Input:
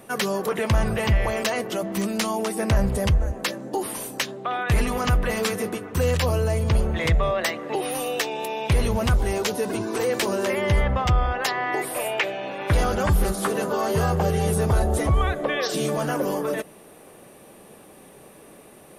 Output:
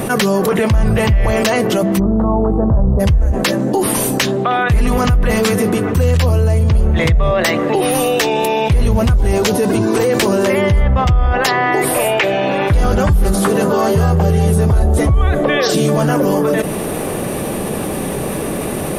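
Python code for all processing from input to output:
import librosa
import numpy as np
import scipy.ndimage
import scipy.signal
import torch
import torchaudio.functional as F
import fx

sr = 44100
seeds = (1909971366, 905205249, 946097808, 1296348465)

y = fx.cheby2_lowpass(x, sr, hz=2200.0, order=4, stop_db=40, at=(1.98, 2.99), fade=0.02)
y = fx.hum_notches(y, sr, base_hz=50, count=9, at=(1.98, 2.99), fade=0.02)
y = fx.dmg_buzz(y, sr, base_hz=50.0, harmonics=27, level_db=-35.0, tilt_db=-7, odd_only=False, at=(1.98, 2.99), fade=0.02)
y = fx.low_shelf(y, sr, hz=270.0, db=9.5)
y = fx.env_flatten(y, sr, amount_pct=70)
y = y * librosa.db_to_amplitude(-3.0)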